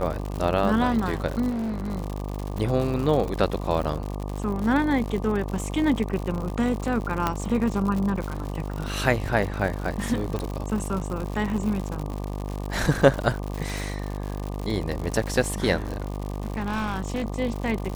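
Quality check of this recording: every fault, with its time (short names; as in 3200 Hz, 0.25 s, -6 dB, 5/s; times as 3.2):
buzz 50 Hz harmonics 24 -31 dBFS
crackle 120/s -29 dBFS
1.49–1.92 clipped -25.5 dBFS
7.27 pop -9 dBFS
10.39 pop -17 dBFS
15.76–17.26 clipped -23.5 dBFS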